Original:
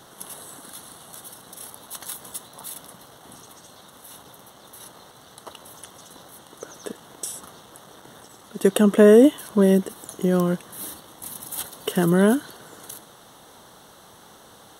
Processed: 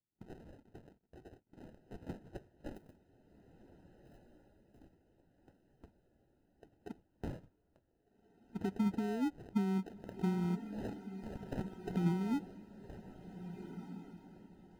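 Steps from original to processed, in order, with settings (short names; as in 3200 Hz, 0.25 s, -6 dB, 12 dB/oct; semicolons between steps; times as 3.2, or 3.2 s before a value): limiter -15 dBFS, peak gain reduction 11.5 dB; compressor 12:1, threshold -25 dBFS, peak gain reduction 7.5 dB; Butterworth band-stop 690 Hz, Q 0.83; band shelf 2500 Hz -10.5 dB; sample-and-hold 39×; gate -44 dBFS, range -20 dB; 2.75–4.82 high shelf 8100 Hz +10.5 dB; diffused feedback echo 1.632 s, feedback 52%, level -7 dB; spectral expander 1.5:1; gain -3.5 dB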